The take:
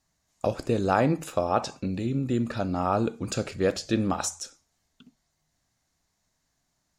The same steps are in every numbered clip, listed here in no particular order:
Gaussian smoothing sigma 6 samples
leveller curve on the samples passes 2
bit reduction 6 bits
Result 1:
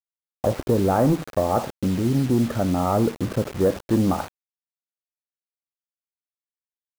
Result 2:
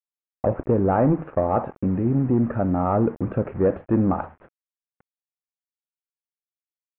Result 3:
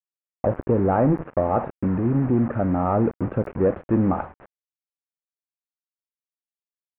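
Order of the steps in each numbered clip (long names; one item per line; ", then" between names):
leveller curve on the samples, then Gaussian smoothing, then bit reduction
leveller curve on the samples, then bit reduction, then Gaussian smoothing
bit reduction, then leveller curve on the samples, then Gaussian smoothing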